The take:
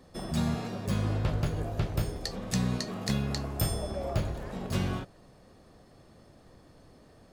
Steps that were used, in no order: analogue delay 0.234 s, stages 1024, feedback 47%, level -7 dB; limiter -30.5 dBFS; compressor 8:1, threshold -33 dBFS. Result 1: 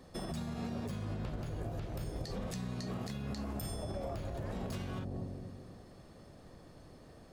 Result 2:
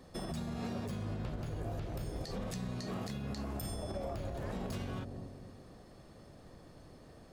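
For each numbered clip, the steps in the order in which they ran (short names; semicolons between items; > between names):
analogue delay > compressor > limiter; compressor > analogue delay > limiter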